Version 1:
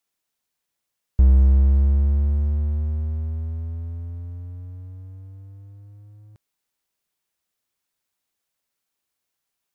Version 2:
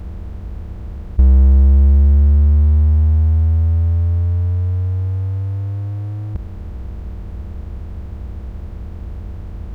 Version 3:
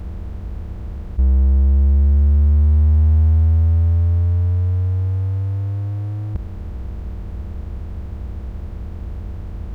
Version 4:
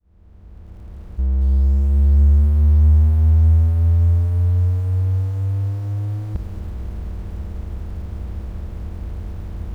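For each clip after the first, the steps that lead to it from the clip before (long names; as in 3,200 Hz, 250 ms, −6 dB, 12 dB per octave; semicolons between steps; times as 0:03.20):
compressor on every frequency bin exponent 0.2; parametric band 130 Hz −7 dB 0.37 octaves; level +4 dB
brickwall limiter −8 dBFS, peak gain reduction 6 dB
fade in at the beginning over 2.14 s; feedback echo at a low word length 226 ms, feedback 35%, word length 7 bits, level −14 dB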